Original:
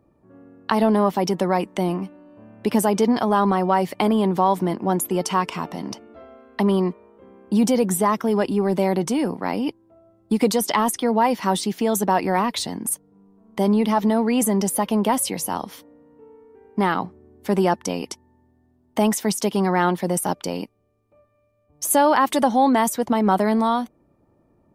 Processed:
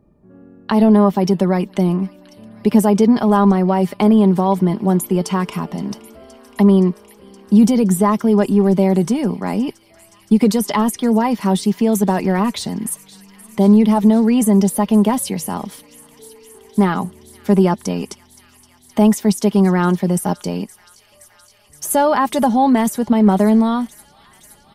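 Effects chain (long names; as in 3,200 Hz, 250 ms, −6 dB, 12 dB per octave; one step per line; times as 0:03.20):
low-shelf EQ 270 Hz +11 dB
comb filter 4.9 ms, depth 42%
delay with a high-pass on its return 520 ms, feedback 84%, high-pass 2,300 Hz, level −18.5 dB
level −1 dB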